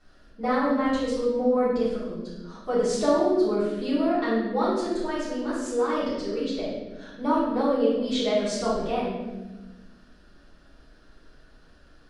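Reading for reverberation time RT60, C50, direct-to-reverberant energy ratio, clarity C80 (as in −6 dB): 1.2 s, 0.0 dB, −12.0 dB, 3.0 dB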